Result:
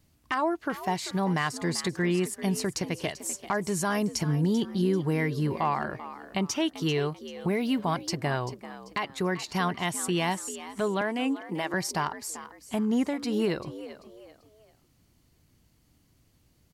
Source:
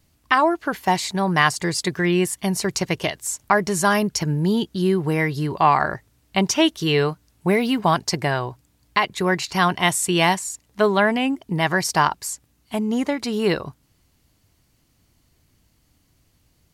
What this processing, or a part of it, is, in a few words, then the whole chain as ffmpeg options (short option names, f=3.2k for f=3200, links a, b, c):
clipper into limiter: -filter_complex "[0:a]asettb=1/sr,asplit=3[a][b][c];[a]atrim=end=11.014[d];[b]atrim=start=11.01:end=11.74,asetpts=PTS-STARTPTS,afade=t=in:d=0.004:c=qsin,afade=t=out:st=0.726:d=0.004:c=qsin,highpass=f=230:w=0.5412,highpass=f=230:w=1.3066[e];[c]atrim=start=11.736[f];[d][e]acrossfade=d=0.004:c1=hsin:c2=qsin[g];[g][f]acrossfade=d=0.004:c1=qsin:c2=hsin,equalizer=f=200:w=0.47:g=3.5,asoftclip=type=hard:threshold=-5dB,alimiter=limit=-13dB:level=0:latency=1:release=469,asplit=4[h][i][j][k];[i]adelay=390,afreqshift=71,volume=-14dB[l];[j]adelay=780,afreqshift=142,volume=-23.6dB[m];[k]adelay=1170,afreqshift=213,volume=-33.3dB[n];[h][l][m][n]amix=inputs=4:normalize=0,volume=-4.5dB"